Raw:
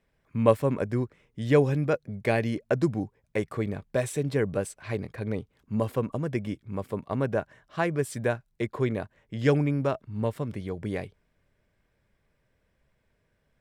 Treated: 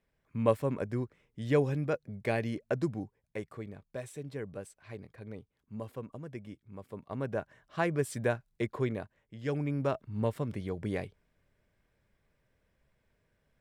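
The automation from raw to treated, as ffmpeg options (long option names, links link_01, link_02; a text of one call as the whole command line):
ffmpeg -i in.wav -af "volume=16dB,afade=type=out:start_time=2.69:duration=0.99:silence=0.421697,afade=type=in:start_time=6.83:duration=1.05:silence=0.298538,afade=type=out:start_time=8.64:duration=0.78:silence=0.281838,afade=type=in:start_time=9.42:duration=0.57:silence=0.266073" out.wav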